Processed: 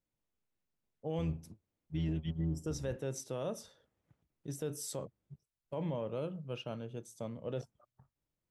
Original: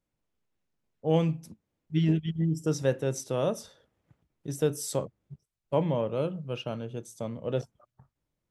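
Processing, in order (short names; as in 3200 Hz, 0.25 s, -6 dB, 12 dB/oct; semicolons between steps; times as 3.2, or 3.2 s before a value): 1.18–2.97 octaver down 1 oct, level -5 dB; limiter -21 dBFS, peak gain reduction 8.5 dB; gain -6.5 dB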